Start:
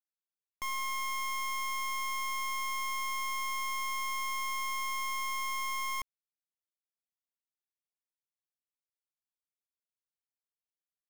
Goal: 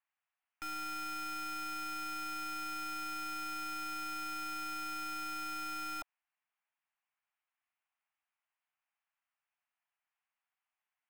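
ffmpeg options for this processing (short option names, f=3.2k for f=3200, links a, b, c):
-af "highpass=f=380:t=q:w=0.5412,highpass=f=380:t=q:w=1.307,lowpass=f=2.5k:t=q:w=0.5176,lowpass=f=2.5k:t=q:w=0.7071,lowpass=f=2.5k:t=q:w=1.932,afreqshift=310,aeval=exprs='(tanh(501*val(0)+0.45)-tanh(0.45))/501':c=same,volume=13.5dB"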